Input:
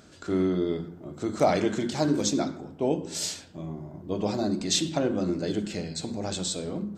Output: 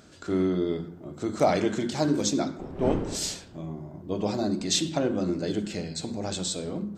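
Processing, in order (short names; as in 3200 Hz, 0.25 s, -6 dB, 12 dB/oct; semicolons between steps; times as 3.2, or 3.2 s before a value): 2.58–3.65 wind noise 350 Hz -35 dBFS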